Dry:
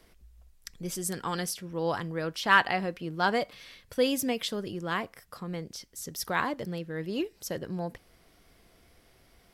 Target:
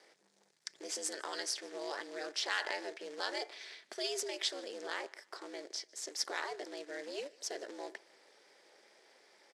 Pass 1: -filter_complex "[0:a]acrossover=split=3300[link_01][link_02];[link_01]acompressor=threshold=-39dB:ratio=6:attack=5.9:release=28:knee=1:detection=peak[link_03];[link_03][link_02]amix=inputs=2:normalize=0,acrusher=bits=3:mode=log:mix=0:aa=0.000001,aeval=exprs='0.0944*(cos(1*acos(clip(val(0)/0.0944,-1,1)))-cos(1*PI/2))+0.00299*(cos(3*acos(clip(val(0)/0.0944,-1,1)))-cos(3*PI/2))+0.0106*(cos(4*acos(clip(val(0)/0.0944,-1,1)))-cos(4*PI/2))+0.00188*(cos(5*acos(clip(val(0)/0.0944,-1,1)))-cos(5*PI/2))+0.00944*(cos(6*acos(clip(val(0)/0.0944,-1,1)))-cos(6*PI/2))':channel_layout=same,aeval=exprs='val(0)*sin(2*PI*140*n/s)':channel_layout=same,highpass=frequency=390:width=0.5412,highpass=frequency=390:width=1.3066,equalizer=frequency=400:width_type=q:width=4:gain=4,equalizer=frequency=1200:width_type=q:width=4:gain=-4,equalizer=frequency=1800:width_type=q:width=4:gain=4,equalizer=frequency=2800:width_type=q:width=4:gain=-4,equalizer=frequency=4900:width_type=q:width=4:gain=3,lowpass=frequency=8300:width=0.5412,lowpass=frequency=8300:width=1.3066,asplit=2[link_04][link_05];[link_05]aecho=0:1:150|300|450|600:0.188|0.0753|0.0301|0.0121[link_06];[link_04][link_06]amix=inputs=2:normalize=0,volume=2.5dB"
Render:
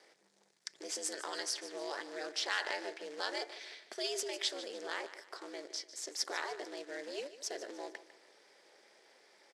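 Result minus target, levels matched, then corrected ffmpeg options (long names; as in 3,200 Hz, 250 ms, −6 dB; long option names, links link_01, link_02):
echo-to-direct +11 dB
-filter_complex "[0:a]acrossover=split=3300[link_01][link_02];[link_01]acompressor=threshold=-39dB:ratio=6:attack=5.9:release=28:knee=1:detection=peak[link_03];[link_03][link_02]amix=inputs=2:normalize=0,acrusher=bits=3:mode=log:mix=0:aa=0.000001,aeval=exprs='0.0944*(cos(1*acos(clip(val(0)/0.0944,-1,1)))-cos(1*PI/2))+0.00299*(cos(3*acos(clip(val(0)/0.0944,-1,1)))-cos(3*PI/2))+0.0106*(cos(4*acos(clip(val(0)/0.0944,-1,1)))-cos(4*PI/2))+0.00188*(cos(5*acos(clip(val(0)/0.0944,-1,1)))-cos(5*PI/2))+0.00944*(cos(6*acos(clip(val(0)/0.0944,-1,1)))-cos(6*PI/2))':channel_layout=same,aeval=exprs='val(0)*sin(2*PI*140*n/s)':channel_layout=same,highpass=frequency=390:width=0.5412,highpass=frequency=390:width=1.3066,equalizer=frequency=400:width_type=q:width=4:gain=4,equalizer=frequency=1200:width_type=q:width=4:gain=-4,equalizer=frequency=1800:width_type=q:width=4:gain=4,equalizer=frequency=2800:width_type=q:width=4:gain=-4,equalizer=frequency=4900:width_type=q:width=4:gain=3,lowpass=frequency=8300:width=0.5412,lowpass=frequency=8300:width=1.3066,asplit=2[link_04][link_05];[link_05]aecho=0:1:150|300:0.0531|0.0212[link_06];[link_04][link_06]amix=inputs=2:normalize=0,volume=2.5dB"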